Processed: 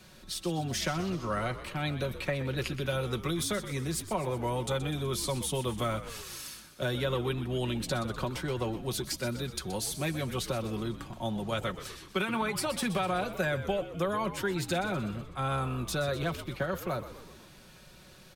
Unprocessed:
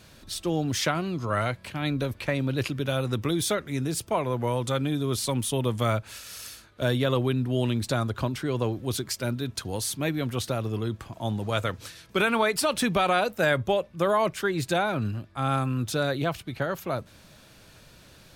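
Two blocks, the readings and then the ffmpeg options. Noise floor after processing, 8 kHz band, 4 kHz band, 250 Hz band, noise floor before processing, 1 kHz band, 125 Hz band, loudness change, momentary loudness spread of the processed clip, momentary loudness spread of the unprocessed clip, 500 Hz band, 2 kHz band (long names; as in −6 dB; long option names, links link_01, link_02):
−53 dBFS, −3.5 dB, −4.0 dB, −5.5 dB, −53 dBFS, −5.5 dB, −5.5 dB, −5.5 dB, 6 LU, 8 LU, −5.5 dB, −5.5 dB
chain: -filter_complex "[0:a]aecho=1:1:5.4:0.55,acrossover=split=250|520[link_01][link_02][link_03];[link_01]acompressor=threshold=-31dB:ratio=4[link_04];[link_02]acompressor=threshold=-36dB:ratio=4[link_05];[link_03]acompressor=threshold=-28dB:ratio=4[link_06];[link_04][link_05][link_06]amix=inputs=3:normalize=0,asplit=2[link_07][link_08];[link_08]asplit=6[link_09][link_10][link_11][link_12][link_13][link_14];[link_09]adelay=125,afreqshift=-63,volume=-12.5dB[link_15];[link_10]adelay=250,afreqshift=-126,volume=-17.2dB[link_16];[link_11]adelay=375,afreqshift=-189,volume=-22dB[link_17];[link_12]adelay=500,afreqshift=-252,volume=-26.7dB[link_18];[link_13]adelay=625,afreqshift=-315,volume=-31.4dB[link_19];[link_14]adelay=750,afreqshift=-378,volume=-36.2dB[link_20];[link_15][link_16][link_17][link_18][link_19][link_20]amix=inputs=6:normalize=0[link_21];[link_07][link_21]amix=inputs=2:normalize=0,volume=-3dB"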